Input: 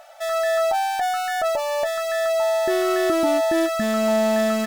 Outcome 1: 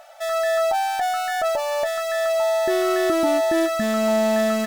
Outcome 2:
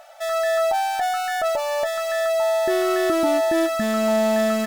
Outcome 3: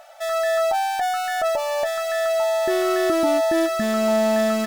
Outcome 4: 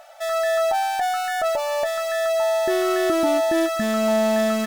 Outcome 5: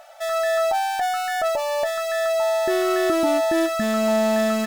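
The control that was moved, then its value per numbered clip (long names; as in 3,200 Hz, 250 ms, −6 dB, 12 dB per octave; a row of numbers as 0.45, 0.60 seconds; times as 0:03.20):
feedback echo with a high-pass in the loop, delay time: 582, 376, 1,023, 248, 65 milliseconds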